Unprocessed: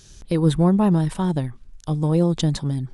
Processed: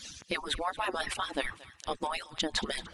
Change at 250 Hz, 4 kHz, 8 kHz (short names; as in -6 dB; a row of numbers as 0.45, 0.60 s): -22.0, +1.5, -2.5 dB